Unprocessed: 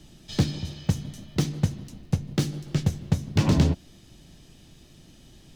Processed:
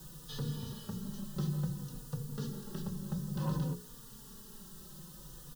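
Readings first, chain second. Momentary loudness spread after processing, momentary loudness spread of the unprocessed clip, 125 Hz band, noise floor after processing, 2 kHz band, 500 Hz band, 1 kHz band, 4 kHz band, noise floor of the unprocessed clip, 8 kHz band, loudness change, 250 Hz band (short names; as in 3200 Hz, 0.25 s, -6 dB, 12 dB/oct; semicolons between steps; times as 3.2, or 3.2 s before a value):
15 LU, 9 LU, -12.0 dB, -52 dBFS, -16.0 dB, -12.0 dB, -10.5 dB, -13.0 dB, -52 dBFS, -9.5 dB, -12.5 dB, -11.0 dB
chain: LPF 3600 Hz 12 dB/oct; notches 60/120/180/240/300/360/420/480 Hz; in parallel at +3 dB: compressor, threshold -32 dBFS, peak gain reduction 16.5 dB; on the sum: limiter -18.5 dBFS, peak gain reduction 11.5 dB; requantised 8-bit, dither triangular; fixed phaser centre 450 Hz, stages 8; endless flanger 3.5 ms -0.57 Hz; gain -2.5 dB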